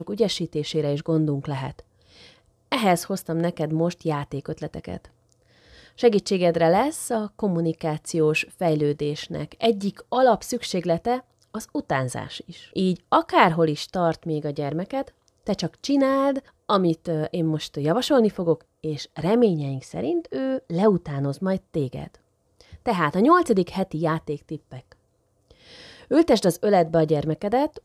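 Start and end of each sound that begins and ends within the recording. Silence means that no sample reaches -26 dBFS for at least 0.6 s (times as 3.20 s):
2.72–4.97 s
6.03–22.04 s
22.86–24.56 s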